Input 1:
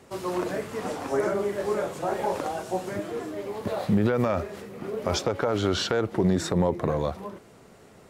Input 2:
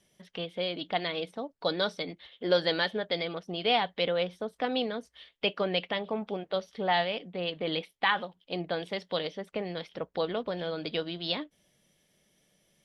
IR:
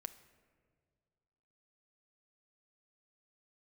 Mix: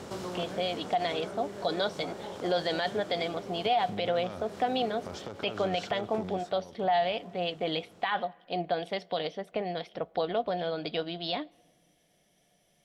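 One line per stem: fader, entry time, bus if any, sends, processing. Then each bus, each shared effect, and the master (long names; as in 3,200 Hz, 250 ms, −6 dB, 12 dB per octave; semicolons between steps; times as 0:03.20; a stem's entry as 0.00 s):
0:06.28 −5.5 dB → 0:06.52 −15 dB, 0.00 s, no send, compressor on every frequency bin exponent 0.6; downward compressor 2 to 1, threshold −30 dBFS, peak gain reduction 8 dB; automatic ducking −6 dB, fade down 0.80 s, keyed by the second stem
−2.0 dB, 0.00 s, send −8.5 dB, parametric band 710 Hz +14 dB 0.2 octaves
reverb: on, RT60 1.9 s, pre-delay 7 ms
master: brickwall limiter −18.5 dBFS, peak gain reduction 11 dB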